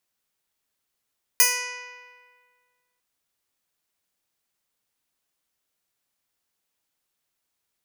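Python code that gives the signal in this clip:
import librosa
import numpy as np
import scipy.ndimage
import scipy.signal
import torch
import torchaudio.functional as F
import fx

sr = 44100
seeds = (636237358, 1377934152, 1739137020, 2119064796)

y = fx.pluck(sr, length_s=1.6, note=71, decay_s=1.79, pick=0.12, brightness='bright')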